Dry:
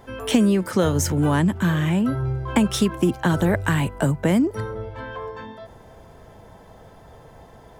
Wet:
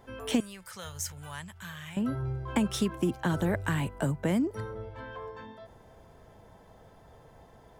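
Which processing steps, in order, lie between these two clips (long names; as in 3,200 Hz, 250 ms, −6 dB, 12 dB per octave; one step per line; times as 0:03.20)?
0:00.40–0:01.97: guitar amp tone stack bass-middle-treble 10-0-10
level −8.5 dB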